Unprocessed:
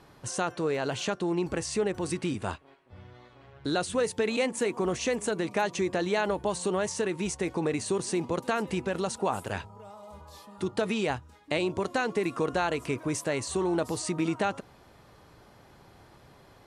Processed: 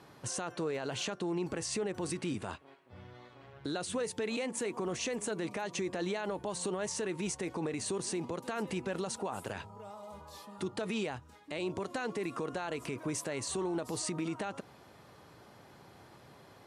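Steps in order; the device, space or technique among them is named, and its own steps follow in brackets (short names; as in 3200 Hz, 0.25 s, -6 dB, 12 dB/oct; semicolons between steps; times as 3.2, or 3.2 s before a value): podcast mastering chain (HPF 100 Hz; compressor 2:1, threshold -31 dBFS, peak gain reduction 5.5 dB; limiter -26 dBFS, peak gain reduction 10 dB; MP3 96 kbps 48000 Hz)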